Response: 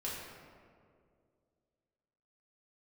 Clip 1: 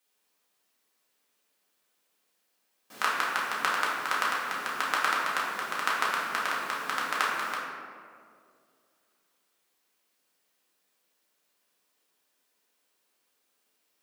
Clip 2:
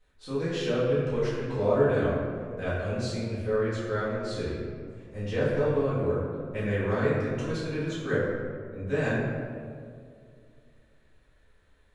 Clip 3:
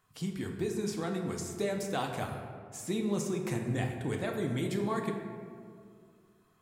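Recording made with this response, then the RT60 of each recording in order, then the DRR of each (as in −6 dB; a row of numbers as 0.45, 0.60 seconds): 1; 2.2, 2.2, 2.2 seconds; −6.5, −12.0, 1.5 decibels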